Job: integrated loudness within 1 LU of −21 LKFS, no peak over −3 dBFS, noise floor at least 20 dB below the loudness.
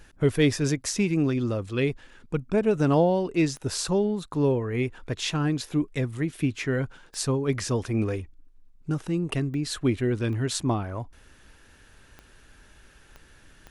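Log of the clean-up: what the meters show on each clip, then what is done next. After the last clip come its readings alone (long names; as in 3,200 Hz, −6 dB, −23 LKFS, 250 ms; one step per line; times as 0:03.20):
number of clicks 7; integrated loudness −26.5 LKFS; sample peak −9.5 dBFS; target loudness −21.0 LKFS
→ click removal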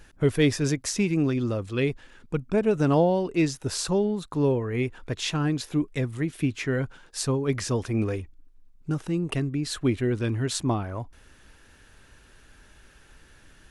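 number of clicks 0; integrated loudness −26.5 LKFS; sample peak −9.5 dBFS; target loudness −21.0 LKFS
→ level +5.5 dB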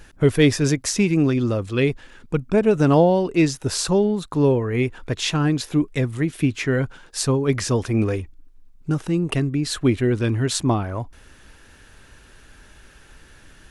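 integrated loudness −21.0 LKFS; sample peak −4.0 dBFS; background noise floor −49 dBFS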